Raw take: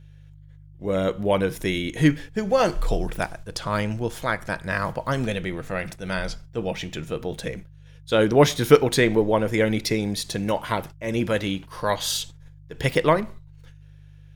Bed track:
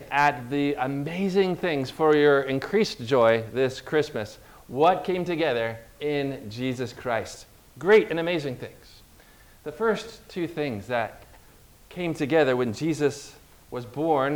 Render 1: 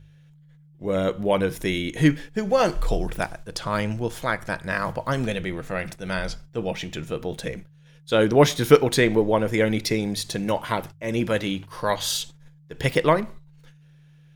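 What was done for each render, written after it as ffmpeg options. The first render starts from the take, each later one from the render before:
ffmpeg -i in.wav -af "bandreject=frequency=50:width_type=h:width=4,bandreject=frequency=100:width_type=h:width=4" out.wav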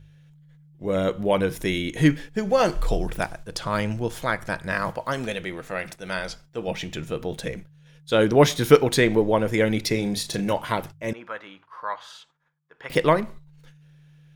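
ffmpeg -i in.wav -filter_complex "[0:a]asettb=1/sr,asplit=3[link_01][link_02][link_03];[link_01]atrim=end=4.904[link_04];[link_02]atrim=start=4.9:end=6.68,asetpts=PTS-STARTPTS,afade=type=in:duration=0.004:curve=qsin,afade=type=out:start_time=1.776:duration=0.004:curve=qsin,lowshelf=frequency=210:gain=-10.5[link_05];[link_03]atrim=start=6.676[link_06];[link_04][link_05]acrossfade=duration=0.004:curve1=hsin:curve2=qsin[link_07];[link_07][link_06]acrossfade=duration=0.004:curve1=qsin:curve2=hsin,asettb=1/sr,asplit=3[link_08][link_09][link_10];[link_08]atrim=end=9.924[link_11];[link_09]atrim=start=9.92:end=10.53,asetpts=PTS-STARTPTS,afade=type=in:duration=0.004:curve=qsin,afade=type=out:start_time=0.606:duration=0.004:curve=qsin,asplit=2[link_12][link_13];[link_13]adelay=35,volume=-8.5dB[link_14];[link_12][link_14]amix=inputs=2:normalize=0,atrim=end_sample=26901[link_15];[link_10]atrim=start=10.526[link_16];[link_11][link_15]acrossfade=duration=0.004:curve1=hsin:curve2=qsin[link_17];[link_17][link_16]acrossfade=duration=0.004:curve1=qsin:curve2=hsin,asettb=1/sr,asplit=3[link_18][link_19][link_20];[link_18]atrim=end=11.134[link_21];[link_19]atrim=start=11.13:end=12.9,asetpts=PTS-STARTPTS,afade=type=in:duration=0.004:curve=qsin,afade=type=out:start_time=1.766:duration=0.004:curve=qsin,bandpass=frequency=1200:width_type=q:width=2.6[link_22];[link_20]atrim=start=12.896[link_23];[link_21][link_22]acrossfade=duration=0.004:curve1=hsin:curve2=qsin[link_24];[link_24][link_23]acrossfade=duration=0.004:curve1=qsin:curve2=hsin" out.wav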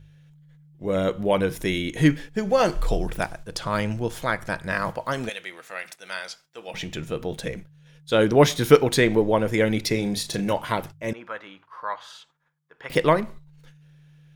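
ffmpeg -i in.wav -filter_complex "[0:a]asettb=1/sr,asplit=3[link_01][link_02][link_03];[link_01]atrim=end=5.294[link_04];[link_02]atrim=start=5.29:end=6.74,asetpts=PTS-STARTPTS,afade=type=in:duration=0.004:curve=qsin,afade=type=out:start_time=1.446:duration=0.004:curve=qsin,highpass=frequency=1400:poles=1[link_05];[link_03]atrim=start=6.736[link_06];[link_04][link_05]acrossfade=duration=0.004:curve1=hsin:curve2=qsin[link_07];[link_07][link_06]acrossfade=duration=0.004:curve1=qsin:curve2=hsin" out.wav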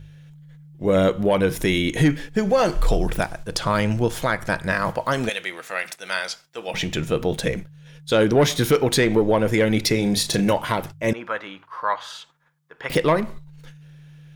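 ffmpeg -i in.wav -af "acontrast=86,alimiter=limit=-9.5dB:level=0:latency=1:release=293" out.wav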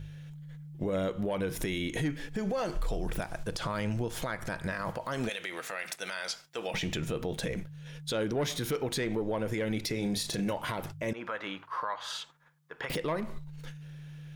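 ffmpeg -i in.wav -af "acompressor=threshold=-27dB:ratio=10,alimiter=limit=-23.5dB:level=0:latency=1:release=49" out.wav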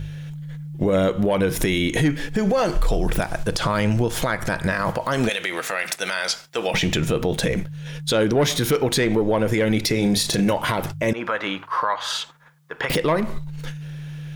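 ffmpeg -i in.wav -af "volume=12dB" out.wav

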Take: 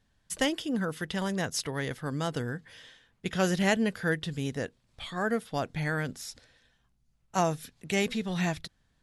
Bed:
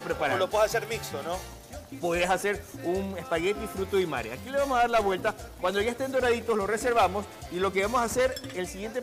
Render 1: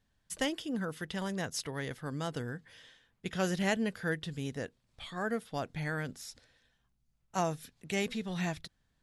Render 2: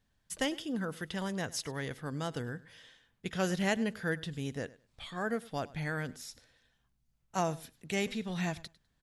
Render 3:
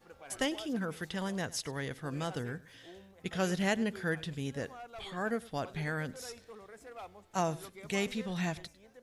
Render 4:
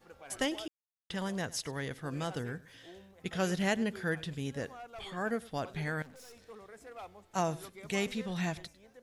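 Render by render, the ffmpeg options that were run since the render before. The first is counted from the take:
ffmpeg -i in.wav -af "volume=-5dB" out.wav
ffmpeg -i in.wav -af "aecho=1:1:101|202:0.0944|0.0179" out.wav
ffmpeg -i in.wav -i bed.wav -filter_complex "[1:a]volume=-24dB[link_01];[0:a][link_01]amix=inputs=2:normalize=0" out.wav
ffmpeg -i in.wav -filter_complex "[0:a]asettb=1/sr,asplit=3[link_01][link_02][link_03];[link_01]atrim=end=4.874[link_04];[link_02]atrim=start=4.87:end=5.3,asetpts=PTS-STARTPTS,afade=type=in:duration=0.004:curve=qsin,afade=type=out:start_time=0.426:duration=0.004:curve=qsin,bandreject=frequency=3900:width=12[link_05];[link_03]atrim=start=5.296[link_06];[link_04][link_05]acrossfade=duration=0.004:curve1=hsin:curve2=qsin[link_07];[link_07][link_06]acrossfade=duration=0.004:curve1=qsin:curve2=hsin,asettb=1/sr,asplit=3[link_08][link_09][link_10];[link_08]atrim=end=6.024[link_11];[link_09]atrim=start=6.02:end=6.42,asetpts=PTS-STARTPTS,afade=type=in:duration=0.004:curve=qsin,afade=type=out:start_time=0.396:duration=0.004:curve=qsin,aeval=exprs='(tanh(355*val(0)+0.4)-tanh(0.4))/355':channel_layout=same[link_12];[link_10]atrim=start=6.416[link_13];[link_11][link_12]acrossfade=duration=0.004:curve1=hsin:curve2=qsin[link_14];[link_14][link_13]acrossfade=duration=0.004:curve1=qsin:curve2=hsin,asplit=3[link_15][link_16][link_17];[link_15]atrim=end=0.68,asetpts=PTS-STARTPTS,afade=type=out:start_time=0.676:duration=0.004:curve=hsin[link_18];[link_16]atrim=start=0.68:end=1.1,asetpts=PTS-STARTPTS,volume=0[link_19];[link_17]atrim=start=1.1,asetpts=PTS-STARTPTS,afade=type=in:duration=0.004:curve=hsin[link_20];[link_18][link_19][link_20]concat=n=3:v=0:a=1" out.wav

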